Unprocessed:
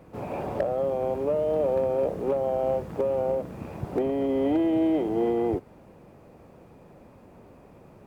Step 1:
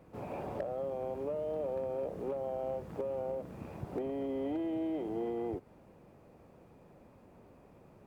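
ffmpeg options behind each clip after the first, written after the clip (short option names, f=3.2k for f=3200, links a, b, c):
-af "acompressor=threshold=-28dB:ratio=2,volume=-7.5dB"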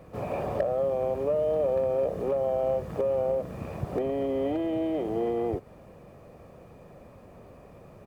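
-af "aecho=1:1:1.7:0.33,volume=8.5dB"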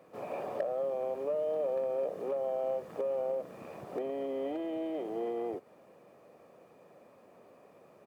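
-af "highpass=280,volume=-6dB"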